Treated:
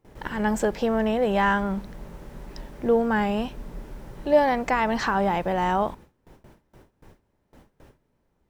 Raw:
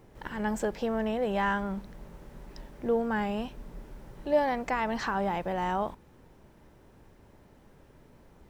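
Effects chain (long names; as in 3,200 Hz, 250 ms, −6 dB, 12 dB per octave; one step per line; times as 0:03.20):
noise gate with hold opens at −45 dBFS
level +6.5 dB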